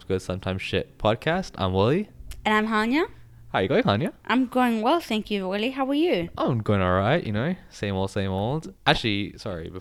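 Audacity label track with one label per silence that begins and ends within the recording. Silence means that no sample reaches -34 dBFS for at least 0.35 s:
3.090000	3.540000	silence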